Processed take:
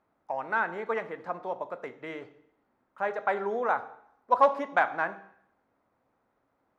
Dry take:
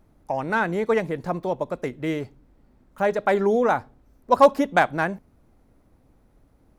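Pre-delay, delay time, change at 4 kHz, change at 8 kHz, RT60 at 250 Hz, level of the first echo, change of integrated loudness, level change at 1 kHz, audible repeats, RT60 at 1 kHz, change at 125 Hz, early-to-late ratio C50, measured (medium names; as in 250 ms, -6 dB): 3 ms, no echo, -11.5 dB, no reading, 0.70 s, no echo, -6.5 dB, -4.5 dB, no echo, 0.75 s, under -15 dB, 15.0 dB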